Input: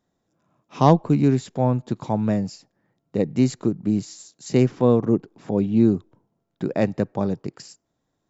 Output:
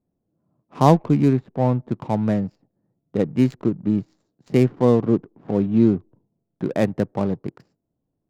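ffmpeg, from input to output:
-filter_complex "[0:a]adynamicsmooth=sensitivity=6.5:basefreq=530,asettb=1/sr,asplit=3[s0][s1][s2];[s0]atrim=end=1.334[s3];[s1]atrim=start=1.33:end=1.89,asetpts=PTS-STARTPTS,afade=t=in:d=0.004:c=qsin,afade=t=out:st=0.556:d=0.004:c=qsin,highshelf=f=5300:g=-11[s4];[s2]atrim=start=1.886[s5];[s3][s4]acrossfade=d=0.004:c1=hsin:c2=qsin[s6];[s6][s5]acrossfade=d=0.004:c1=qsin:c2=hsin,volume=1.12"

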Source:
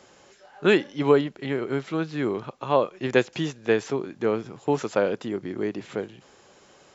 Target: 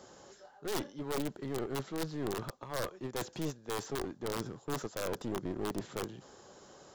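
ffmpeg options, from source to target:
-af "areverse,acompressor=threshold=0.0355:ratio=12,areverse,aeval=exprs='(mod(15.8*val(0)+1,2)-1)/15.8':c=same,equalizer=f=2400:t=o:w=0.78:g=-11.5,aeval=exprs='clip(val(0),-1,0.01)':c=same"

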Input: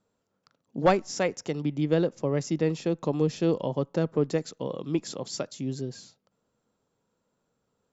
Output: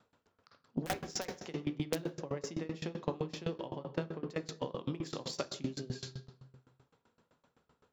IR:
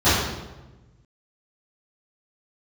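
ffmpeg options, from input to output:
-filter_complex "[0:a]tiltshelf=f=910:g=-6,adynamicsmooth=sensitivity=1.5:basefreq=3800,aeval=exprs='(mod(5.31*val(0)+1,2)-1)/5.31':c=same,acompressor=threshold=0.00891:ratio=10,asplit=2[s0][s1];[1:a]atrim=start_sample=2205[s2];[s1][s2]afir=irnorm=-1:irlink=0,volume=0.0422[s3];[s0][s3]amix=inputs=2:normalize=0,aeval=exprs='val(0)*pow(10,-23*if(lt(mod(7.8*n/s,1),2*abs(7.8)/1000),1-mod(7.8*n/s,1)/(2*abs(7.8)/1000),(mod(7.8*n/s,1)-2*abs(7.8)/1000)/(1-2*abs(7.8)/1000))/20)':c=same,volume=3.98"

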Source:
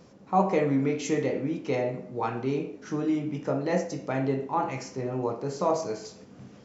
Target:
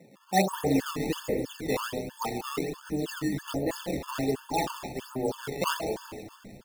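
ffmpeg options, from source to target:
-filter_complex "[0:a]asplit=2[s0][s1];[s1]adelay=138,lowpass=f=2000:p=1,volume=0.376,asplit=2[s2][s3];[s3]adelay=138,lowpass=f=2000:p=1,volume=0.43,asplit=2[s4][s5];[s5]adelay=138,lowpass=f=2000:p=1,volume=0.43,asplit=2[s6][s7];[s7]adelay=138,lowpass=f=2000:p=1,volume=0.43,asplit=2[s8][s9];[s9]adelay=138,lowpass=f=2000:p=1,volume=0.43[s10];[s2][s4][s6][s8][s10]amix=inputs=5:normalize=0[s11];[s0][s11]amix=inputs=2:normalize=0,acrusher=samples=16:mix=1:aa=0.000001:lfo=1:lforange=25.6:lforate=1.3,highpass=f=130:w=0.5412,highpass=f=130:w=1.3066,asplit=2[s12][s13];[s13]asplit=6[s14][s15][s16][s17][s18][s19];[s14]adelay=208,afreqshift=-110,volume=0.2[s20];[s15]adelay=416,afreqshift=-220,volume=0.11[s21];[s16]adelay=624,afreqshift=-330,volume=0.0603[s22];[s17]adelay=832,afreqshift=-440,volume=0.0331[s23];[s18]adelay=1040,afreqshift=-550,volume=0.0182[s24];[s19]adelay=1248,afreqshift=-660,volume=0.01[s25];[s20][s21][s22][s23][s24][s25]amix=inputs=6:normalize=0[s26];[s12][s26]amix=inputs=2:normalize=0,afftfilt=real='re*gt(sin(2*PI*3.1*pts/sr)*(1-2*mod(floor(b*sr/1024/890),2)),0)':imag='im*gt(sin(2*PI*3.1*pts/sr)*(1-2*mod(floor(b*sr/1024/890),2)),0)':win_size=1024:overlap=0.75"

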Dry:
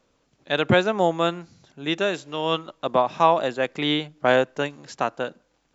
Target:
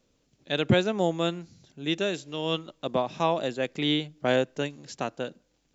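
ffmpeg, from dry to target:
-af "equalizer=f=1100:t=o:w=2:g=-10.5"

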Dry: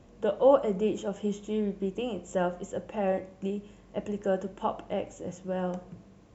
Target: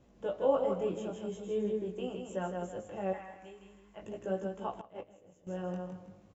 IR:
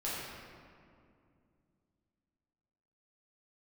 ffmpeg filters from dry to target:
-filter_complex "[0:a]asettb=1/sr,asplit=3[s0][s1][s2];[s0]atrim=end=1.374[s3];[s1]atrim=start=1.37:end=1.93,asetpts=PTS-STARTPTS,afade=t=in:d=0.004:c=qsin,afade=t=out:st=0.556:d=0.004:c=qsin,equalizer=f=460:t=o:w=0.26:g=13.5[s4];[s2]atrim=start=1.926[s5];[s3][s4]acrossfade=d=0.004:c1=hsin:c2=qsin[s6];[s6][s5]acrossfade=d=0.004:c1=qsin:c2=hsin,asplit=2[s7][s8];[s8]aecho=0:1:160|320|480|640:0.562|0.197|0.0689|0.0241[s9];[s7][s9]amix=inputs=2:normalize=0,flanger=delay=15.5:depth=6.9:speed=0.44,asettb=1/sr,asplit=3[s10][s11][s12];[s10]atrim=end=3.134[s13];[s11]atrim=start=3.13:end=4.02,asetpts=PTS-STARTPTS,afade=t=in:d=0.004:c=qsin,afade=t=out:st=0.886:d=0.004:c=qsin,equalizer=f=125:t=o:w=1:g=-12,equalizer=f=250:t=o:w=1:g=-9,equalizer=f=500:t=o:w=1:g=-9,equalizer=f=1000:t=o:w=1:g=4,equalizer=f=2000:t=o:w=1:g=3,equalizer=f=4000:t=o:w=1:g=-4[s14];[s12]atrim=start=4.016[s15];[s13][s14]acrossfade=d=0.004:c1=hsin:c2=qsin[s16];[s16][s15]acrossfade=d=0.004:c1=qsin:c2=hsin,asettb=1/sr,asplit=3[s17][s18][s19];[s17]atrim=end=4.814[s20];[s18]atrim=start=4.81:end=5.47,asetpts=PTS-STARTPTS,afade=t=in:d=0.004:c=qsin,afade=t=out:st=0.656:d=0.004:c=qsin,agate=range=0.178:threshold=0.0282:ratio=16:detection=peak[s21];[s19]atrim=start=5.466[s22];[s20][s21]acrossfade=d=0.004:c1=hsin:c2=qsin[s23];[s23][s22]acrossfade=d=0.004:c1=qsin:c2=hsin,volume=0.562"

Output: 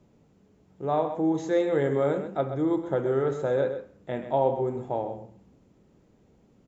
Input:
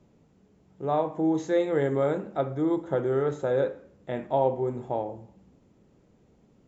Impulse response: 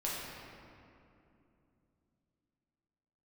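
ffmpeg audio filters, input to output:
-af "aecho=1:1:130:0.299"

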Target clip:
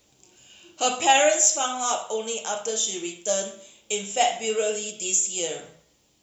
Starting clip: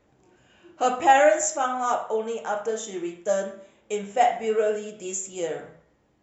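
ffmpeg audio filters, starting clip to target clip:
-filter_complex "[0:a]acrossover=split=5500[s0][s1];[s1]acompressor=threshold=0.00501:ratio=4:attack=1:release=60[s2];[s0][s2]amix=inputs=2:normalize=0,aexciter=amount=6:drive=6.9:freq=2600,volume=0.75"

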